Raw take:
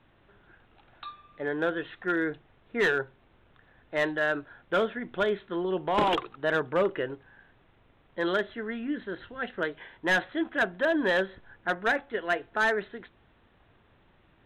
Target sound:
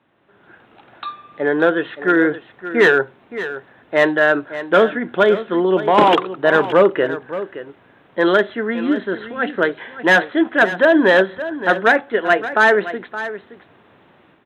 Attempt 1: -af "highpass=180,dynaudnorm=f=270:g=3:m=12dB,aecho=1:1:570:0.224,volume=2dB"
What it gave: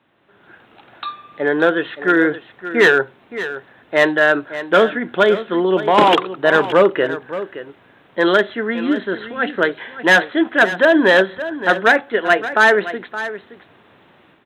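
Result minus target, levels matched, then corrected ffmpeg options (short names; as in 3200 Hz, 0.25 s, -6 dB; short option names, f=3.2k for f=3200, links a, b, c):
4000 Hz band +3.0 dB
-af "highpass=180,highshelf=f=2.7k:g=-6.5,dynaudnorm=f=270:g=3:m=12dB,aecho=1:1:570:0.224,volume=2dB"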